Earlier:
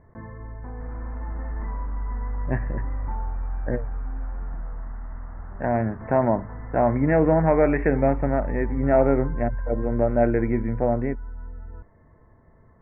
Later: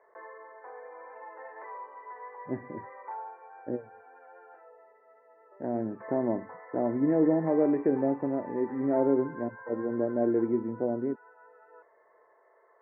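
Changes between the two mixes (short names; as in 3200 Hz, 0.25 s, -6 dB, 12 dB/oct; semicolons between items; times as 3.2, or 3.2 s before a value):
speech: add band-pass 340 Hz, Q 2.4; first sound: add steep high-pass 410 Hz 48 dB/oct; second sound: muted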